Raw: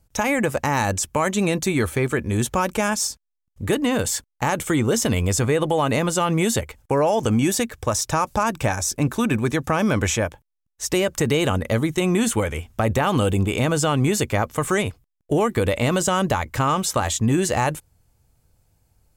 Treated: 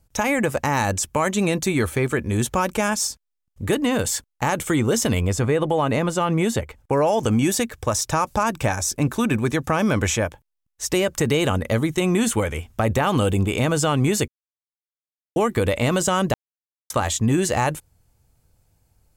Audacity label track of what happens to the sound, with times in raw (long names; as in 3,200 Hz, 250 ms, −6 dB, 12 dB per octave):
5.200000	6.930000	high-shelf EQ 3,500 Hz −8 dB
14.280000	15.360000	silence
16.340000	16.900000	silence